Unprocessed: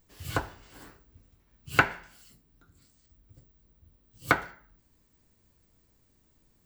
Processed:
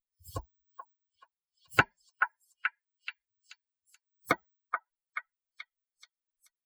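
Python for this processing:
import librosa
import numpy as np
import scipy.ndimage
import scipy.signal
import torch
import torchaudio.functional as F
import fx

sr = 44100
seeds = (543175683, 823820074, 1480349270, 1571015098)

y = fx.bin_expand(x, sr, power=3.0)
y = fx.echo_stepped(y, sr, ms=431, hz=1200.0, octaves=0.7, feedback_pct=70, wet_db=-2.5)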